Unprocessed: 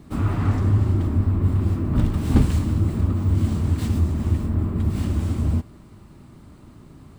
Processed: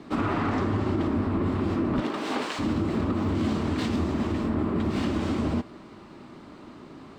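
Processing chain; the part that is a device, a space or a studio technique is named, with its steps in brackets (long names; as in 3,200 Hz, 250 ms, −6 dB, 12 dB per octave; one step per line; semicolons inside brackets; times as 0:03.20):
0:02.00–0:02.58: high-pass filter 280 Hz → 660 Hz 12 dB per octave
DJ mixer with the lows and highs turned down (three-way crossover with the lows and the highs turned down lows −19 dB, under 230 Hz, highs −22 dB, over 5,800 Hz; brickwall limiter −24.5 dBFS, peak gain reduction 8.5 dB)
level +7 dB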